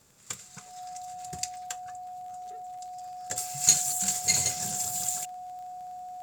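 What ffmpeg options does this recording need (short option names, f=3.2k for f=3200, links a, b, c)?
-af "adeclick=t=4,bandreject=f=730:w=30"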